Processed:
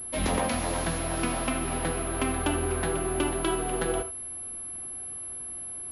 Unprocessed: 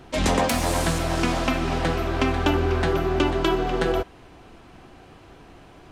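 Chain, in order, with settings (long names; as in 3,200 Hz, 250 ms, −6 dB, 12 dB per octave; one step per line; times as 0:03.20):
reverb whose tail is shaped and stops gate 100 ms rising, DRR 10.5 dB
switching amplifier with a slow clock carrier 11,000 Hz
level −6 dB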